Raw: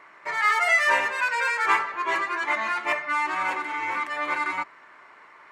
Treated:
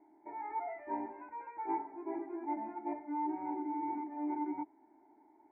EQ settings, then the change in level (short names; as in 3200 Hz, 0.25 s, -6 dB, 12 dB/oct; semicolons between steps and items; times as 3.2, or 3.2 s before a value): vocal tract filter u; fixed phaser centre 760 Hz, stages 8; +7.0 dB